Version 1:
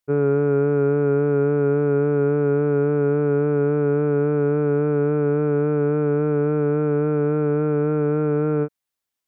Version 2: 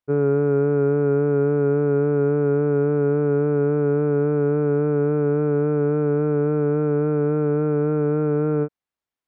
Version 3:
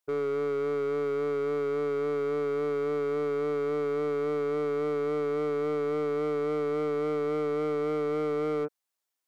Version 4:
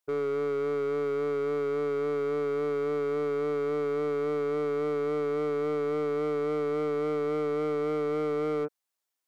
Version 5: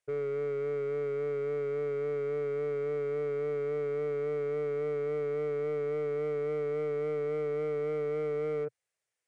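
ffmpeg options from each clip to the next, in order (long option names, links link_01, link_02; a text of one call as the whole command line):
ffmpeg -i in.wav -af "lowpass=frequency=1800:poles=1" out.wav
ffmpeg -i in.wav -af "bass=frequency=250:gain=-14,treble=frequency=4000:gain=9,alimiter=limit=-21.5dB:level=0:latency=1:release=45,asoftclip=type=hard:threshold=-26.5dB" out.wav
ffmpeg -i in.wav -af anull out.wav
ffmpeg -i in.wav -af "aresample=22050,aresample=44100,alimiter=level_in=10dB:limit=-24dB:level=0:latency=1:release=11,volume=-10dB,equalizer=frequency=125:width_type=o:width=1:gain=12,equalizer=frequency=250:width_type=o:width=1:gain=-10,equalizer=frequency=500:width_type=o:width=1:gain=9,equalizer=frequency=1000:width_type=o:width=1:gain=-7,equalizer=frequency=2000:width_type=o:width=1:gain=7,equalizer=frequency=4000:width_type=o:width=1:gain=-5" out.wav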